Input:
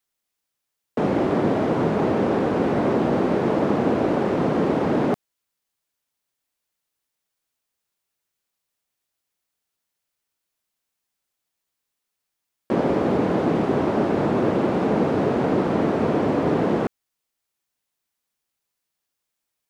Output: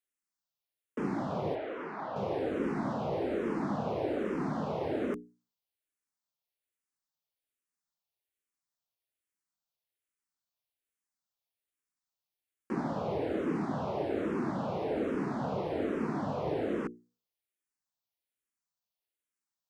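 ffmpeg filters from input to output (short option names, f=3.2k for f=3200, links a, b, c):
-filter_complex "[0:a]asettb=1/sr,asplit=3[a][b][c];[a]atrim=end=1.554[d];[b]atrim=start=1.55:end=2.16,asetpts=PTS-STARTPTS,afade=t=in:d=0.004:c=qsin,afade=t=out:st=0.606:d=0.004:c=qsin,acrossover=split=450 4300:gain=0.141 1 0.0631[e][f][g];[e][f][g]amix=inputs=3:normalize=0[h];[c]atrim=start=2.156[i];[d][h]acrossfade=d=0.004:c1=hsin:c2=qsin[j];[j][i]acrossfade=d=0.004:c1=qsin:c2=hsin,bandreject=f=60:t=h:w=6,bandreject=f=120:t=h:w=6,bandreject=f=180:t=h:w=6,bandreject=f=240:t=h:w=6,bandreject=f=300:t=h:w=6,bandreject=f=360:t=h:w=6,bandreject=f=420:t=h:w=6,bandreject=f=480:t=h:w=6,asplit=2[k][l];[l]afreqshift=-1.2[m];[k][m]amix=inputs=2:normalize=1,volume=-8.5dB"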